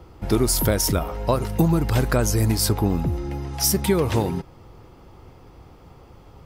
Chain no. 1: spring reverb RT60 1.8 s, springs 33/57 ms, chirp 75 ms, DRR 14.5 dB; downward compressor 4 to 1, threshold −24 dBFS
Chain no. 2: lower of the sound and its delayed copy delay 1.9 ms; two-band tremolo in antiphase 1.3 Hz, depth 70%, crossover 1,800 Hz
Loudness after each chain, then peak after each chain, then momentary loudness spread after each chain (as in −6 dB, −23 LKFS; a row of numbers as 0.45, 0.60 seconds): −28.0, −26.5 LKFS; −11.5, −9.0 dBFS; 19, 10 LU